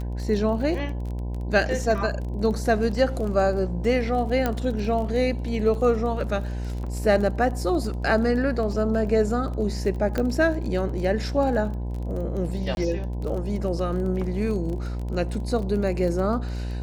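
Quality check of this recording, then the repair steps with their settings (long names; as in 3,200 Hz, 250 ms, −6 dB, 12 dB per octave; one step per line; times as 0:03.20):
mains buzz 60 Hz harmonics 17 −29 dBFS
surface crackle 23 per second −31 dBFS
0:04.46: click −10 dBFS
0:10.18: click −13 dBFS
0:12.75–0:12.77: drop-out 21 ms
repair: click removal
hum removal 60 Hz, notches 17
repair the gap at 0:12.75, 21 ms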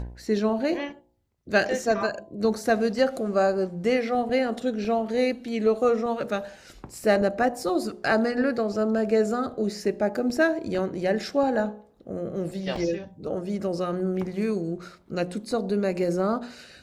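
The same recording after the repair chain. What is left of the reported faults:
0:10.18: click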